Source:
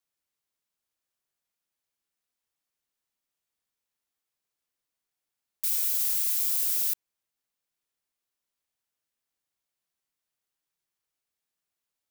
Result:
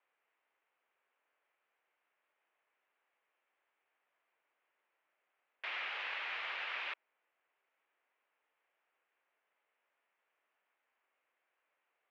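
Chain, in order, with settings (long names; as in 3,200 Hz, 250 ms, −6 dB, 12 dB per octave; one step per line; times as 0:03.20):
single-sideband voice off tune −120 Hz 560–2,700 Hz
level +12.5 dB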